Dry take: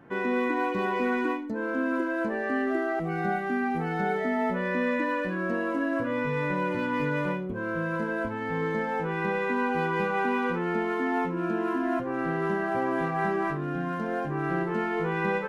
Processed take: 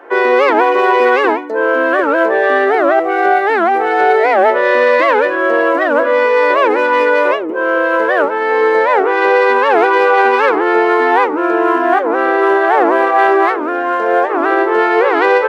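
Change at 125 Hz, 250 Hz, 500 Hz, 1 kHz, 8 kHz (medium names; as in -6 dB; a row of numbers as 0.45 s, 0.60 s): under -15 dB, +8.5 dB, +18.5 dB, +18.5 dB, no reading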